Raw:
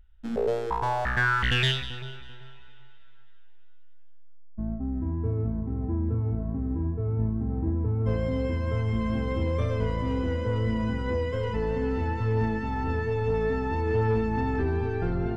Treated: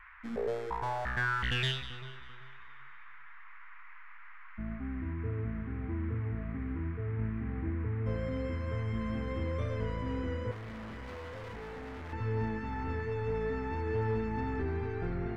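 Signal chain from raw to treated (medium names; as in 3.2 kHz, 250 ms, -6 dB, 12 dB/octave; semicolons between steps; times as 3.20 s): 10.51–12.13 s: overload inside the chain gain 34.5 dB; band noise 1–2.2 kHz -47 dBFS; trim -7.5 dB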